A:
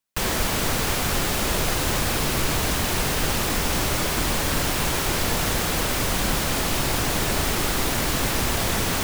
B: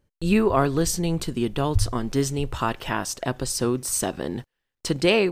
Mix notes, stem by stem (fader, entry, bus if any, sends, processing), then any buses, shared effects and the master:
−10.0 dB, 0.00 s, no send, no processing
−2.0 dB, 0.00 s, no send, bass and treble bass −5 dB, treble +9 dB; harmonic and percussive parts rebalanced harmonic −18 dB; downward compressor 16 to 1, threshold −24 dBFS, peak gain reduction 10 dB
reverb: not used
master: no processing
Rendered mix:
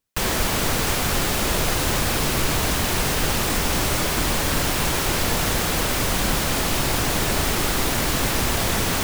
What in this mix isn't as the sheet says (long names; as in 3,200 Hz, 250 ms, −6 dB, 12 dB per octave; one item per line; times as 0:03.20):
stem A −10.0 dB → +1.5 dB
stem B −2.0 dB → −12.0 dB